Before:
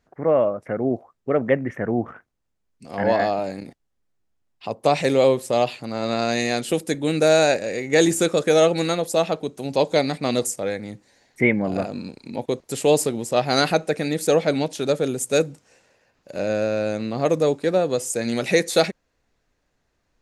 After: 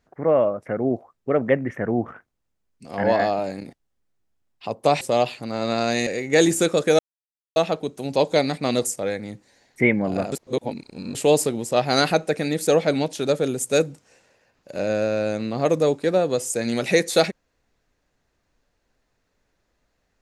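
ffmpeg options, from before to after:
ffmpeg -i in.wav -filter_complex "[0:a]asplit=7[link_01][link_02][link_03][link_04][link_05][link_06][link_07];[link_01]atrim=end=5.012[link_08];[link_02]atrim=start=5.418:end=6.482[link_09];[link_03]atrim=start=7.668:end=8.59,asetpts=PTS-STARTPTS,afade=type=out:start_time=0.918:duration=0.004:curve=hsin[link_10];[link_04]atrim=start=8.59:end=9.16,asetpts=PTS-STARTPTS,volume=0[link_11];[link_05]atrim=start=9.16:end=11.922,asetpts=PTS-STARTPTS,afade=type=in:duration=0.004:curve=hsin[link_12];[link_06]atrim=start=11.918:end=12.752,asetpts=PTS-STARTPTS,areverse[link_13];[link_07]atrim=start=12.748[link_14];[link_08][link_09]acrossfade=duration=0.004:curve1=hsin:curve2=hsin[link_15];[link_10][link_11][link_12]concat=n=3:v=0:a=1[link_16];[link_15][link_16]acrossfade=duration=0.004:curve1=hsin:curve2=hsin[link_17];[link_17][link_13]acrossfade=duration=0.004:curve1=hsin:curve2=hsin[link_18];[link_18][link_14]acrossfade=duration=0.004:curve1=hsin:curve2=hsin" out.wav

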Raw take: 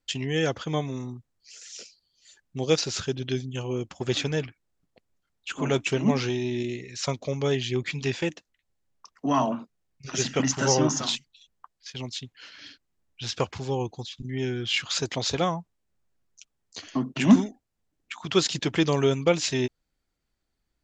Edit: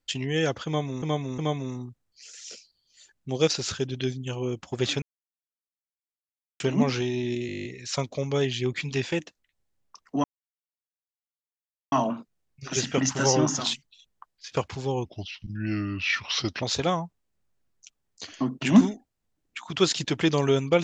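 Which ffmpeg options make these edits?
ffmpeg -i in.wav -filter_complex "[0:a]asplit=18[link_01][link_02][link_03][link_04][link_05][link_06][link_07][link_08][link_09][link_10][link_11][link_12][link_13][link_14][link_15][link_16][link_17][link_18];[link_01]atrim=end=1.022[link_19];[link_02]atrim=start=0.658:end=1.022[link_20];[link_03]atrim=start=0.658:end=4.3,asetpts=PTS-STARTPTS,afade=type=out:start_time=3.638:duration=0.004:curve=hsin[link_21];[link_04]atrim=start=4.3:end=5.88,asetpts=PTS-STARTPTS,volume=0[link_22];[link_05]atrim=start=5.88:end=6.772,asetpts=PTS-STARTPTS,afade=type=in:duration=0.004:curve=hsin[link_23];[link_06]atrim=start=6.748:end=6.772[link_24];[link_07]atrim=start=6.748:end=6.772[link_25];[link_08]atrim=start=6.748:end=6.772[link_26];[link_09]atrim=start=6.748:end=6.772[link_27];[link_10]atrim=start=6.748:end=6.772[link_28];[link_11]atrim=start=6.748:end=6.772[link_29];[link_12]atrim=start=6.748:end=6.772[link_30];[link_13]atrim=start=6.748:end=6.772[link_31];[link_14]atrim=start=6.748:end=9.34,asetpts=PTS-STARTPTS,afade=type=out:start_time=2.588:duration=0.004:curve=hsin,apad=pad_dur=1.68[link_32];[link_15]atrim=start=9.34:end=11.942,asetpts=PTS-STARTPTS,afade=type=in:duration=0.004:curve=hsin[link_33];[link_16]atrim=start=13.348:end=13.884[link_34];[link_17]atrim=start=13.88:end=15.17,asetpts=PTS-STARTPTS,asetrate=36162,aresample=44100[link_35];[link_18]atrim=start=15.166[link_36];[link_19][link_20]acrossfade=duration=0.004:curve1=hsin:curve2=hsin[link_37];[link_21][link_22][link_23]concat=n=3:v=0:a=1[link_38];[link_37][link_38]acrossfade=duration=0.004:curve1=hsin:curve2=hsin[link_39];[link_39][link_24]acrossfade=duration=0.004:curve1=hsin:curve2=hsin[link_40];[link_40][link_25]acrossfade=duration=0.004:curve1=hsin:curve2=hsin[link_41];[link_41][link_26]acrossfade=duration=0.004:curve1=hsin:curve2=hsin[link_42];[link_42][link_27]acrossfade=duration=0.004:curve1=hsin:curve2=hsin[link_43];[link_43][link_28]acrossfade=duration=0.004:curve1=hsin:curve2=hsin[link_44];[link_44][link_29]acrossfade=duration=0.004:curve1=hsin:curve2=hsin[link_45];[link_45][link_30]acrossfade=duration=0.004:curve1=hsin:curve2=hsin[link_46];[link_46][link_31]acrossfade=duration=0.004:curve1=hsin:curve2=hsin[link_47];[link_32][link_33]concat=n=2:v=0:a=1[link_48];[link_47][link_48]acrossfade=duration=0.004:curve1=hsin:curve2=hsin[link_49];[link_49][link_34]acrossfade=duration=0.004:curve1=hsin:curve2=hsin[link_50];[link_50][link_35]acrossfade=duration=0.004:curve1=hsin:curve2=hsin[link_51];[link_51][link_36]acrossfade=duration=0.004:curve1=hsin:curve2=hsin" out.wav

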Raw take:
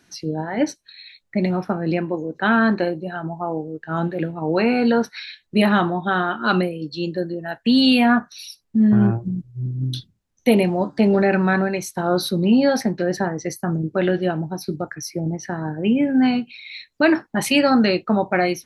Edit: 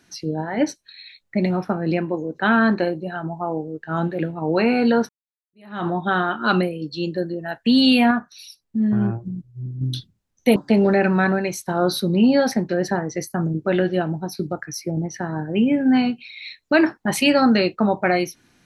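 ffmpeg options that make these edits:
ffmpeg -i in.wav -filter_complex "[0:a]asplit=5[link_01][link_02][link_03][link_04][link_05];[link_01]atrim=end=5.09,asetpts=PTS-STARTPTS,afade=type=out:start_time=5.086:duration=0.004:curve=hsin[link_06];[link_02]atrim=start=5.09:end=8.112,asetpts=PTS-STARTPTS,afade=type=in:duration=0.78:curve=exp[link_07];[link_03]atrim=start=8.108:end=9.812,asetpts=PTS-STARTPTS,volume=-4.5dB[link_08];[link_04]atrim=start=9.808:end=10.562[link_09];[link_05]atrim=start=10.848[link_10];[link_06][link_07]concat=n=2:v=0:a=1[link_11];[link_11][link_08]acrossfade=duration=0.004:curve1=hsin:curve2=hsin[link_12];[link_12][link_09]acrossfade=duration=0.004:curve1=hsin:curve2=hsin[link_13];[link_13][link_10]acrossfade=duration=0.004:curve1=hsin:curve2=hsin" out.wav

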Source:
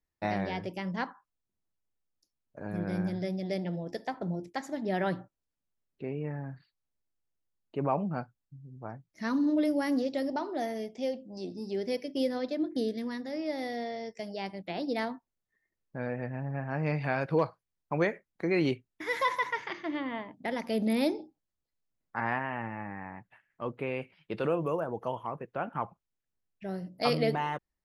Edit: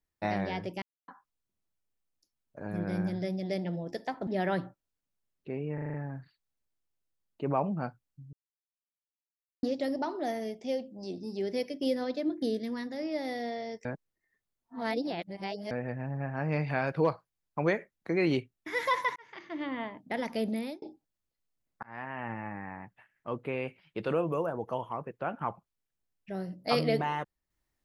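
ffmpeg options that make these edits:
ffmpeg -i in.wav -filter_complex "[0:a]asplit=16[link_01][link_02][link_03][link_04][link_05][link_06][link_07][link_08][link_09][link_10][link_11][link_12][link_13][link_14][link_15][link_16];[link_01]atrim=end=0.82,asetpts=PTS-STARTPTS,afade=type=out:start_time=0.816:duration=0.004:curve=hsin[link_17];[link_02]atrim=start=0.82:end=1.08,asetpts=PTS-STARTPTS,volume=0[link_18];[link_03]atrim=start=1.08:end=4.272,asetpts=PTS-STARTPTS,afade=type=in:duration=0.004:curve=hsin[link_19];[link_04]atrim=start=4.808:end=6.322[link_20];[link_05]atrim=start=6.278:end=6.322[link_21];[link_06]atrim=start=6.278:end=6.322[link_22];[link_07]atrim=start=6.278:end=6.322[link_23];[link_08]atrim=start=6.278:end=6.322[link_24];[link_09]atrim=start=6.278:end=8.67,asetpts=PTS-STARTPTS,afade=type=out:start_time=2.388:duration=0.004:curve=hsin[link_25];[link_10]atrim=start=8.67:end=9.97,asetpts=PTS-STARTPTS,volume=0[link_26];[link_11]atrim=start=9.97:end=14.192,asetpts=PTS-STARTPTS,afade=type=in:duration=0.004:curve=hsin[link_27];[link_12]atrim=start=14.188:end=16.052,asetpts=PTS-STARTPTS,areverse[link_28];[link_13]atrim=start=16.048:end=19.5,asetpts=PTS-STARTPTS,afade=type=out:start_time=3.448:duration=0.004:curve=hsin[link_29];[link_14]atrim=start=19.5:end=21.16,asetpts=PTS-STARTPTS,afade=type=in:duration=0.58,afade=type=out:start_time=1.19:duration=0.47[link_30];[link_15]atrim=start=21.16:end=22.17,asetpts=PTS-STARTPTS,afade=type=in:duration=0.004:curve=hsin,afade=type=out:start_time=1.006:duration=0.004:curve=hsin[link_31];[link_16]atrim=start=22.17,asetpts=PTS-STARTPTS,afade=type=in:duration=0.5[link_32];[link_17][link_18][link_19]concat=n=3:v=0:a=1[link_33];[link_33][link_20]acrossfade=duration=0.004:curve1=hsin:curve2=hsin[link_34];[link_34][link_21]acrossfade=duration=0.004:curve1=hsin:curve2=hsin[link_35];[link_35][link_22]acrossfade=duration=0.004:curve1=hsin:curve2=hsin[link_36];[link_36][link_23]acrossfade=duration=0.004:curve1=hsin:curve2=hsin[link_37];[link_37][link_24]acrossfade=duration=0.004:curve1=hsin:curve2=hsin[link_38];[link_25][link_26][link_27]concat=n=3:v=0:a=1[link_39];[link_38][link_39]acrossfade=duration=0.004:curve1=hsin:curve2=hsin[link_40];[link_40][link_28]acrossfade=duration=0.004:curve1=hsin:curve2=hsin[link_41];[link_29][link_30][link_31][link_32]concat=n=4:v=0:a=1[link_42];[link_41][link_42]acrossfade=duration=0.004:curve1=hsin:curve2=hsin" out.wav

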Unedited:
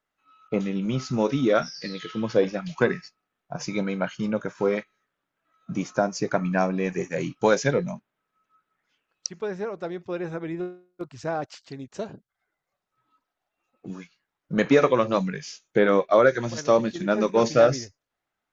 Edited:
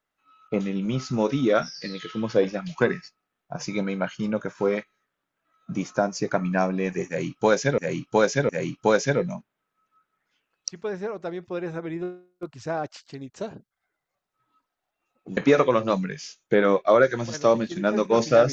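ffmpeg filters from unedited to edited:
ffmpeg -i in.wav -filter_complex "[0:a]asplit=4[link_01][link_02][link_03][link_04];[link_01]atrim=end=7.782[link_05];[link_02]atrim=start=7.068:end=7.782[link_06];[link_03]atrim=start=7.068:end=13.952[link_07];[link_04]atrim=start=14.608[link_08];[link_05][link_06]acrossfade=duration=0.004:curve1=hsin:curve2=hsin[link_09];[link_09][link_07]acrossfade=duration=0.004:curve1=hsin:curve2=hsin[link_10];[link_10][link_08]acrossfade=duration=0.004:curve1=hsin:curve2=hsin" out.wav

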